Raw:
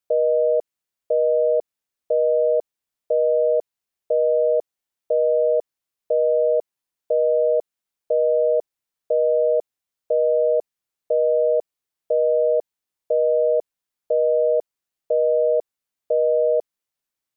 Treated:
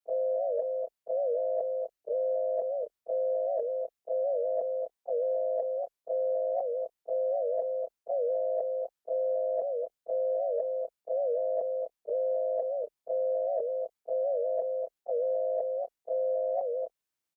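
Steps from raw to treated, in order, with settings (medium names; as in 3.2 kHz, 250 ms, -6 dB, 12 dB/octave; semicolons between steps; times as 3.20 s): short-time spectra conjugated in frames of 66 ms; frequency shift +31 Hz; delay 249 ms -9 dB; reverse; compression, threshold -27 dBFS, peak gain reduction 7 dB; reverse; warped record 78 rpm, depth 160 cents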